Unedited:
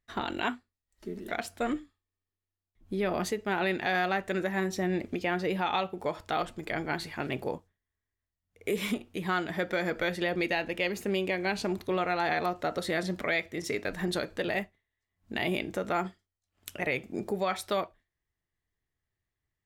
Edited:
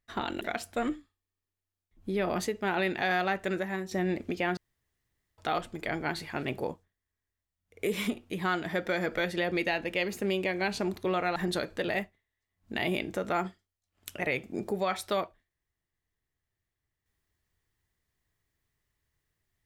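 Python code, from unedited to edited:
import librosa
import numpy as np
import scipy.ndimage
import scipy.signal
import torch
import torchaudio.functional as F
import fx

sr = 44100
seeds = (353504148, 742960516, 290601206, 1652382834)

y = fx.edit(x, sr, fx.cut(start_s=0.41, length_s=0.84),
    fx.fade_out_to(start_s=4.33, length_s=0.42, floor_db=-8.0),
    fx.room_tone_fill(start_s=5.41, length_s=0.81),
    fx.cut(start_s=12.2, length_s=1.76), tone=tone)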